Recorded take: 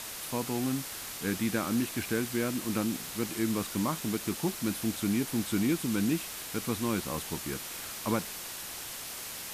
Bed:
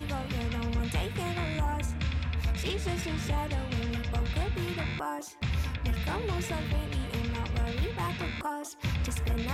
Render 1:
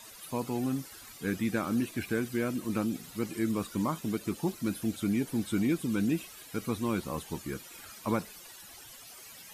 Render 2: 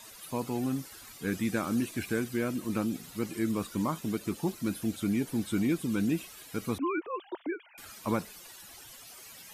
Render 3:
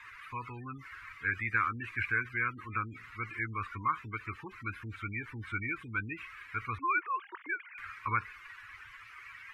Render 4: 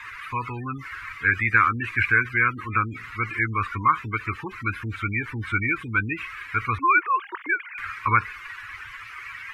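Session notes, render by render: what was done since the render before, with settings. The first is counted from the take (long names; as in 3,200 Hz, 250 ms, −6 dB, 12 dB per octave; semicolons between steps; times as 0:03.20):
broadband denoise 15 dB, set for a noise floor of −41 dBFS
0:01.32–0:02.24: parametric band 7,900 Hz +3.5 dB 1.4 octaves; 0:06.78–0:07.78: three sine waves on the formant tracks
gate on every frequency bin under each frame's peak −30 dB strong; drawn EQ curve 110 Hz 0 dB, 170 Hz −21 dB, 280 Hz −16 dB, 450 Hz −14 dB, 650 Hz −29 dB, 1,100 Hz +7 dB, 2,200 Hz +11 dB, 3,400 Hz −11 dB, 7,300 Hz −23 dB, 13,000 Hz −29 dB
level +11.5 dB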